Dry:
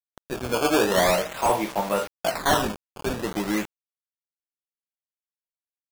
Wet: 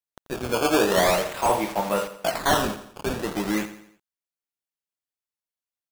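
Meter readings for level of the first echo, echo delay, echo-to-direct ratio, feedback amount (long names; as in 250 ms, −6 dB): −13.0 dB, 86 ms, −12.0 dB, 45%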